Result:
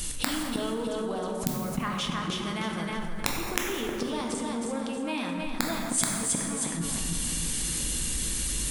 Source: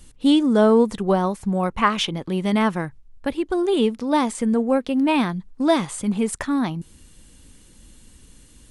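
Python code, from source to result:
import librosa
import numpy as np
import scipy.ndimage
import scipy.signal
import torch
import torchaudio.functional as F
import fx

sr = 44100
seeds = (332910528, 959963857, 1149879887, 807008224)

p1 = fx.gate_flip(x, sr, shuts_db=-19.0, range_db=-27)
p2 = p1 + fx.echo_feedback(p1, sr, ms=314, feedback_pct=37, wet_db=-4.0, dry=0)
p3 = (np.mod(10.0 ** (20.0 / 20.0) * p2 + 1.0, 2.0) - 1.0) / 10.0 ** (20.0 / 20.0)
p4 = fx.rider(p3, sr, range_db=10, speed_s=0.5)
p5 = p3 + (p4 * librosa.db_to_amplitude(0.0))
p6 = fx.high_shelf(p5, sr, hz=2100.0, db=11.0)
p7 = fx.rev_plate(p6, sr, seeds[0], rt60_s=2.3, hf_ratio=0.5, predelay_ms=0, drr_db=2.0)
p8 = fx.env_flatten(p7, sr, amount_pct=50)
y = p8 * librosa.db_to_amplitude(-4.0)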